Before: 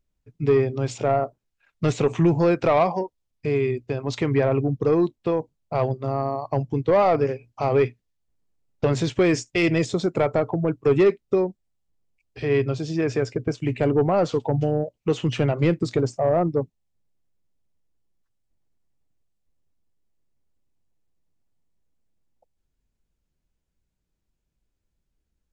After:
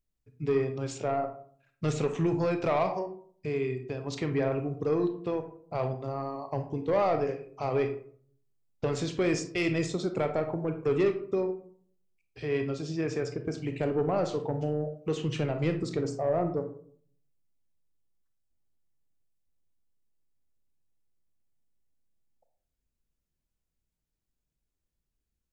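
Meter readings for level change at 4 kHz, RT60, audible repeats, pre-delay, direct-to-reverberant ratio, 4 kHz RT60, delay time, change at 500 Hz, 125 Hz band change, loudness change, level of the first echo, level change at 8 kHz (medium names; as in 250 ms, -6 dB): -6.0 dB, 0.55 s, no echo, 29 ms, 6.5 dB, 0.25 s, no echo, -7.5 dB, -8.5 dB, -7.5 dB, no echo, -4.5 dB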